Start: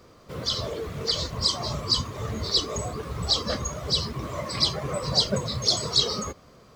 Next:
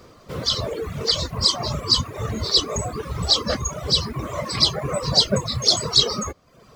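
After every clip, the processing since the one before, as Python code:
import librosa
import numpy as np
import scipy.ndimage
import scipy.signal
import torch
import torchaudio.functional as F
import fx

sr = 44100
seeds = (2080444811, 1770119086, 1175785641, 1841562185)

y = fx.dereverb_blind(x, sr, rt60_s=0.69)
y = y * 10.0 ** (5.5 / 20.0)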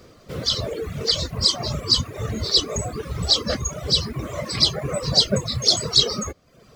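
y = fx.peak_eq(x, sr, hz=1000.0, db=-7.0, octaves=0.62)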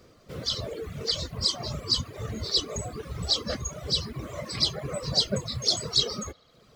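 y = fx.echo_wet_bandpass(x, sr, ms=72, feedback_pct=82, hz=1300.0, wet_db=-24)
y = y * 10.0 ** (-7.0 / 20.0)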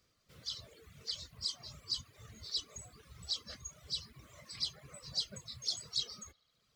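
y = fx.tone_stack(x, sr, knobs='5-5-5')
y = y * 10.0 ** (-5.0 / 20.0)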